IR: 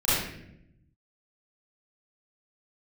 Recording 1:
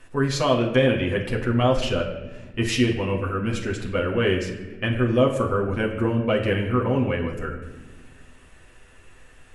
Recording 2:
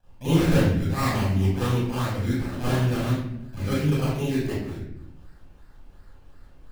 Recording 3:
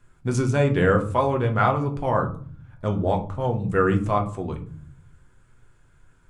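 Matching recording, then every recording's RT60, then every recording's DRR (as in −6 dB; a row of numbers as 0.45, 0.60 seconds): 2; 1.3, 0.75, 0.50 seconds; −1.5, −13.0, 3.0 decibels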